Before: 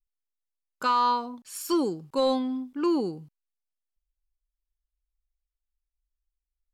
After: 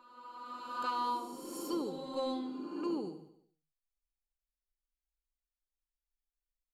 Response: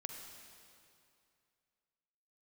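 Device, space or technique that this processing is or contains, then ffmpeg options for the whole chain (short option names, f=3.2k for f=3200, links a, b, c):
reverse reverb: -filter_complex "[0:a]areverse[a];[1:a]atrim=start_sample=2205[b];[a][b]afir=irnorm=-1:irlink=0,areverse,aecho=1:1:73|146|219|292|365|438:0.266|0.141|0.0747|0.0396|0.021|0.0111,volume=-8dB"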